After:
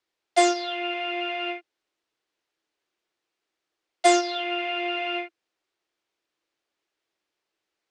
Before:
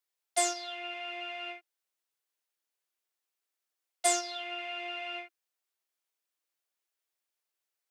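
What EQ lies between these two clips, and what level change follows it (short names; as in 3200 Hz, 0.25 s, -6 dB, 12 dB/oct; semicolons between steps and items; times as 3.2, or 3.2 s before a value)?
LPF 4600 Hz 12 dB/oct; bell 320 Hz +9 dB 1.1 oct; +9.0 dB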